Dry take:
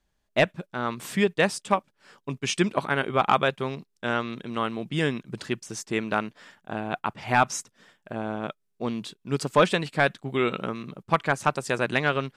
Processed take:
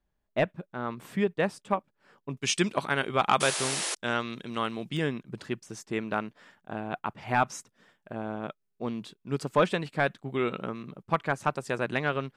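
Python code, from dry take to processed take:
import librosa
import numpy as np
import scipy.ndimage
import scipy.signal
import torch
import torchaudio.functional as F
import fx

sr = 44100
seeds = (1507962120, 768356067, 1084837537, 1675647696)

y = fx.peak_eq(x, sr, hz=7100.0, db=fx.steps((0.0, -11.5), (2.37, 5.5), (4.97, -5.5)), octaves=2.8)
y = fx.spec_paint(y, sr, seeds[0], shape='noise', start_s=3.4, length_s=0.55, low_hz=280.0, high_hz=11000.0, level_db=-28.0)
y = y * librosa.db_to_amplitude(-3.5)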